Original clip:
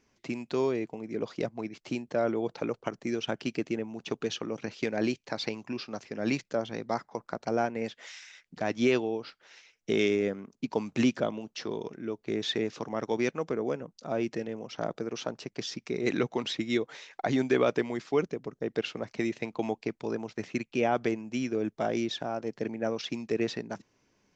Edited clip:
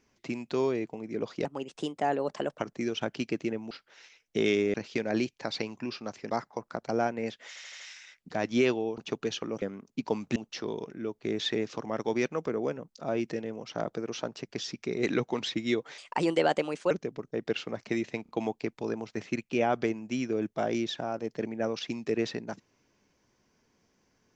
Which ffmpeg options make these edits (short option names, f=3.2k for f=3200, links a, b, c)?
-filter_complex "[0:a]asplit=17[a][b][c][d][e][f][g][h][i][j][k][l][m][n][o][p][q];[a]atrim=end=1.454[r];[b]atrim=start=1.45:end=2.85,asetpts=PTS-STARTPTS,asetrate=54243,aresample=44100,atrim=end_sample=50195,asetpts=PTS-STARTPTS[s];[c]atrim=start=2.846:end=3.972[t];[d]atrim=start=9.238:end=10.272[u];[e]atrim=start=4.608:end=6.172[v];[f]atrim=start=6.878:end=8.142[w];[g]atrim=start=8.058:end=8.142[x];[h]atrim=start=8.058:end=8.142[y];[i]atrim=start=8.058:end=8.142[z];[j]atrim=start=8.058:end=9.242[aa];[k]atrim=start=3.968:end=4.612[ab];[l]atrim=start=10.268:end=11.012[ac];[m]atrim=start=11.388:end=17.014[ad];[n]atrim=start=17.01:end=18.19,asetpts=PTS-STARTPTS,asetrate=56007,aresample=44100[ae];[o]atrim=start=18.186:end=19.542[af];[p]atrim=start=19.508:end=19.542[ag];[q]atrim=start=19.508[ah];[r][s]acrossfade=d=0.004:c1=hsin:c2=hsin[ai];[ai][t]acrossfade=d=0.004:c1=hsin:c2=hsin[aj];[aj][u]acrossfade=d=0.004:c1=hsin:c2=hsin[ak];[ak][v]acrossfade=d=0.004:c1=hsin:c2=hsin[al];[al][w]acrossfade=d=0.004:c1=hsin:c2=hsin[am];[am][x]acrossfade=d=0.004:c1=hsin:c2=hsin[an];[an][y]acrossfade=d=0.004:c1=hsin:c2=hsin[ao];[ao][z]acrossfade=d=0.004:c1=hsin:c2=hsin[ap];[ap][aa]acrossfade=d=0.004:c1=hsin:c2=hsin[aq];[aq][ab]acrossfade=d=0.004:c1=hsin:c2=hsin[ar];[ar][ac]acrossfade=d=0.004:c1=hsin:c2=hsin[as];[as][ad]acrossfade=d=0.004:c1=hsin:c2=hsin[at];[at][ae]acrossfade=d=0.004:c1=hsin:c2=hsin[au];[au][af]acrossfade=d=0.004:c1=hsin:c2=hsin[av];[av][ag]acrossfade=d=0.004:c1=hsin:c2=hsin[aw];[aw][ah]acrossfade=d=0.004:c1=hsin:c2=hsin"